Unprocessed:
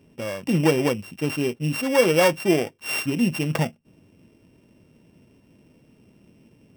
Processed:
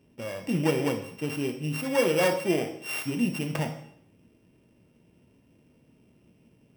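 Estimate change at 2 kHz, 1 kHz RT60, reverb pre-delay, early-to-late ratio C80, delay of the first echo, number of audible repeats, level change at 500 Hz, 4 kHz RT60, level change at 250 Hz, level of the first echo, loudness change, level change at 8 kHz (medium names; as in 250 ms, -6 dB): -5.5 dB, 0.70 s, 7 ms, 12.0 dB, no echo, no echo, -5.5 dB, 0.65 s, -5.0 dB, no echo, -5.5 dB, -5.5 dB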